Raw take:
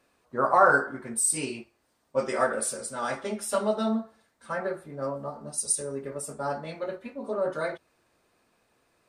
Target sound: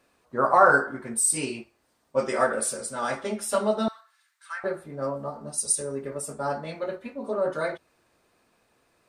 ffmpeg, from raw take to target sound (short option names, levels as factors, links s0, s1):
-filter_complex "[0:a]asettb=1/sr,asplit=3[s0][s1][s2];[s0]atrim=end=3.884[s3];[s1]atrim=start=3.88:end=4.64,asetpts=PTS-STARTPTS,afade=t=in:d=0.004:c=qsin,afade=t=out:st=0.756:d=0.004:c=qsin,highpass=f=1300:w=0.5412,highpass=f=1300:w=1.3066[s4];[s2]atrim=start=4.636[s5];[s3][s4]acrossfade=d=0.004:c1=hsin:c2=qsin[s6];[s6][s5]acrossfade=d=0.004:c1=qsin:c2=hsin,volume=1.26"